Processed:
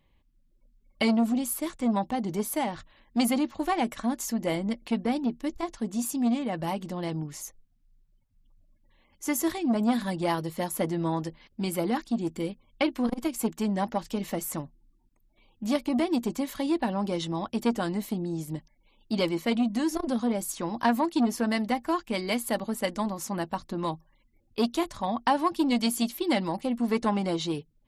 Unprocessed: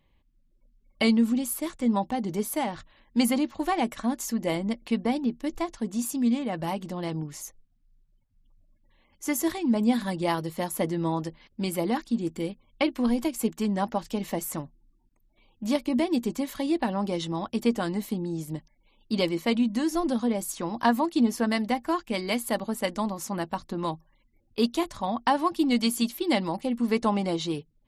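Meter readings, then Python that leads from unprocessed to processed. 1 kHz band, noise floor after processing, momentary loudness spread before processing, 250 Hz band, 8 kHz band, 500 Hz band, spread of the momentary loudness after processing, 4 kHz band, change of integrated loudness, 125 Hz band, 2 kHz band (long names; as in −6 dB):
−0.5 dB, −67 dBFS, 8 LU, −1.0 dB, 0.0 dB, −1.0 dB, 8 LU, −1.5 dB, −1.0 dB, −0.5 dB, −1.0 dB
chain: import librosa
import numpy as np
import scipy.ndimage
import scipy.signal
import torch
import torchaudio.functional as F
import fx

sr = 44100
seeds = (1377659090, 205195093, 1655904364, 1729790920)

y = fx.transformer_sat(x, sr, knee_hz=600.0)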